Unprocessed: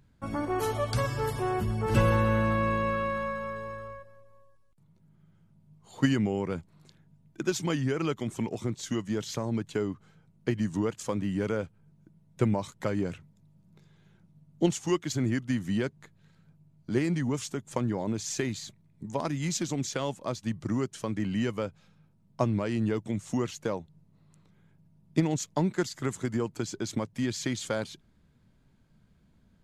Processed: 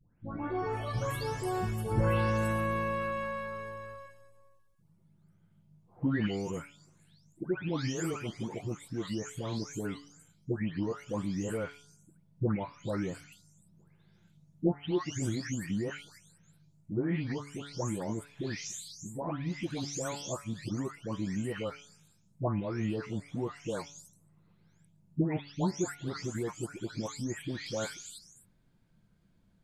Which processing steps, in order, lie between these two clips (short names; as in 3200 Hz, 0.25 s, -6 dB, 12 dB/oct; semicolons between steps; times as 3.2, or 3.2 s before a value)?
spectral delay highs late, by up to 0.507 s; de-hum 142.9 Hz, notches 10; gain -3 dB